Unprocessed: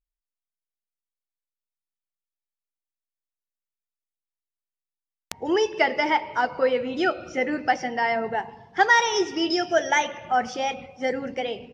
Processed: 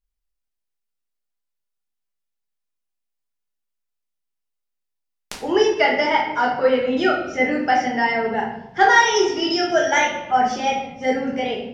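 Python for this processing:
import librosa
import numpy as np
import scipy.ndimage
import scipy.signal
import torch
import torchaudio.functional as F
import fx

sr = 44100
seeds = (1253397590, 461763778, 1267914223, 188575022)

y = fx.room_shoebox(x, sr, seeds[0], volume_m3=150.0, walls='mixed', distance_m=1.3)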